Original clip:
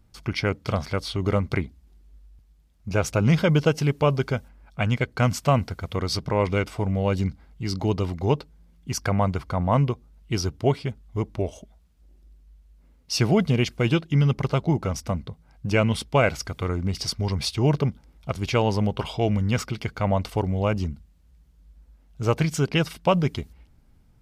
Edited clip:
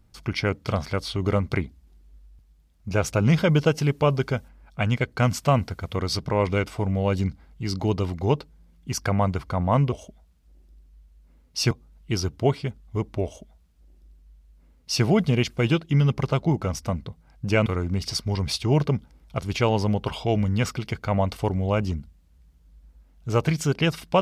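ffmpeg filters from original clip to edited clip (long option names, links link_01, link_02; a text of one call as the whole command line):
ffmpeg -i in.wav -filter_complex "[0:a]asplit=4[link_01][link_02][link_03][link_04];[link_01]atrim=end=9.922[link_05];[link_02]atrim=start=11.458:end=13.252[link_06];[link_03]atrim=start=9.918:end=15.872[link_07];[link_04]atrim=start=16.588[link_08];[link_05][link_06]acrossfade=duration=0.004:curve1=hsin:curve2=hsin[link_09];[link_09][link_07]acrossfade=duration=0.004:curve1=hsin:curve2=hsin[link_10];[link_10][link_08]acrossfade=duration=0.004:curve1=hsin:curve2=hsin" out.wav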